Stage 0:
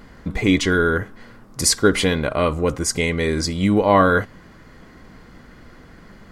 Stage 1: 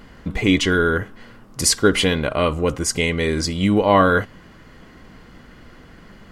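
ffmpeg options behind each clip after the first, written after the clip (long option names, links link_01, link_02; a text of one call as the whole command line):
ffmpeg -i in.wav -af "equalizer=frequency=2900:width_type=o:width=0.29:gain=6.5" out.wav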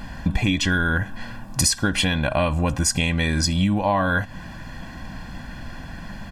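ffmpeg -i in.wav -af "aecho=1:1:1.2:0.81,acompressor=threshold=-23dB:ratio=10,volume=6dB" out.wav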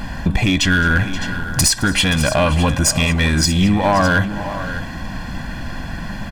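ffmpeg -i in.wav -filter_complex "[0:a]asplit=2[link_01][link_02];[link_02]alimiter=limit=-15.5dB:level=0:latency=1:release=186,volume=-2.5dB[link_03];[link_01][link_03]amix=inputs=2:normalize=0,aeval=exprs='clip(val(0),-1,0.2)':channel_layout=same,aecho=1:1:217|527|610:0.1|0.158|0.224,volume=3dB" out.wav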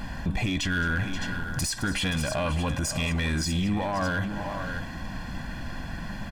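ffmpeg -i in.wav -af "alimiter=limit=-12dB:level=0:latency=1:release=16,volume=-8dB" out.wav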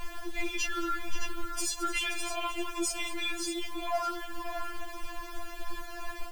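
ffmpeg -i in.wav -af "acrusher=bits=7:mix=0:aa=0.000001,afftfilt=real='re*4*eq(mod(b,16),0)':imag='im*4*eq(mod(b,16),0)':win_size=2048:overlap=0.75" out.wav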